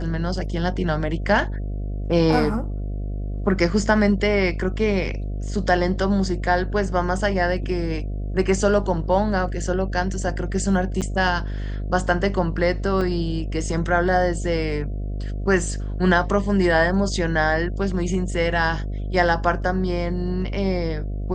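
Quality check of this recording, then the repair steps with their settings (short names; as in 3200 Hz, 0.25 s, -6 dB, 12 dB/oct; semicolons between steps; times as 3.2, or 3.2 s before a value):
buzz 50 Hz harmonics 14 -27 dBFS
11.01–11.02 gap 8 ms
13.01 gap 3.8 ms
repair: de-hum 50 Hz, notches 14; interpolate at 11.01, 8 ms; interpolate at 13.01, 3.8 ms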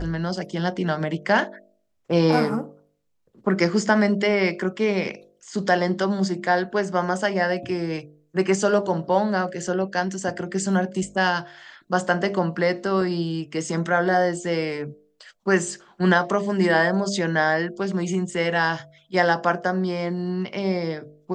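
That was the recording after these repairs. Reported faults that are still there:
none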